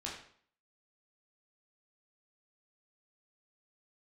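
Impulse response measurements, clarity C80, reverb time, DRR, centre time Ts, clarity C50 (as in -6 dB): 8.0 dB, 0.55 s, -4.0 dB, 38 ms, 4.5 dB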